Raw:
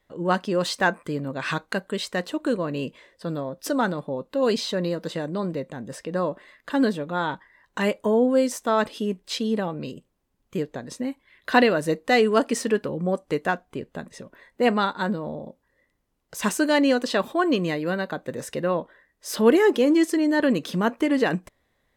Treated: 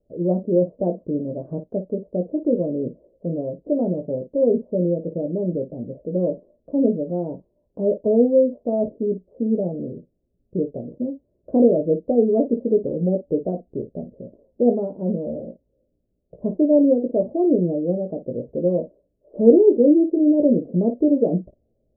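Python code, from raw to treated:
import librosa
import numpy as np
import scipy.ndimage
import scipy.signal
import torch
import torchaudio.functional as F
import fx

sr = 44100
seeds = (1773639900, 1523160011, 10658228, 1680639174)

y = scipy.signal.sosfilt(scipy.signal.cheby1(5, 1.0, 630.0, 'lowpass', fs=sr, output='sos'), x)
y = fx.room_early_taps(y, sr, ms=(17, 54), db=(-5.0, -12.5))
y = y * librosa.db_to_amplitude(3.5)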